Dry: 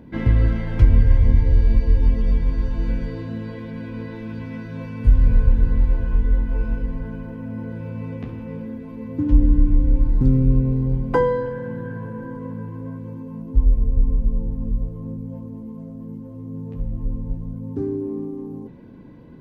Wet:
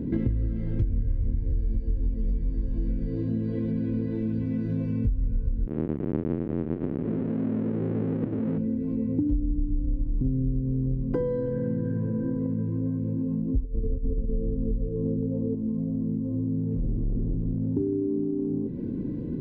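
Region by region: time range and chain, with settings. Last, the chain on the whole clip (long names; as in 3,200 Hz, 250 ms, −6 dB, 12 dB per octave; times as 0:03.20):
0:05.67–0:08.58: each half-wave held at its own peak + band-pass filter 190–2,100 Hz + high-frequency loss of the air 340 metres
0:13.64–0:15.55: parametric band 440 Hz +14.5 dB 0.63 octaves + compressor whose output falls as the input rises −17 dBFS, ratio −0.5
0:16.56–0:17.74: high-shelf EQ 2,100 Hz −10 dB + hard clipping −26.5 dBFS
whole clip: low shelf with overshoot 560 Hz +13.5 dB, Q 1.5; downward compressor 6 to 1, threshold −23 dBFS; level −2 dB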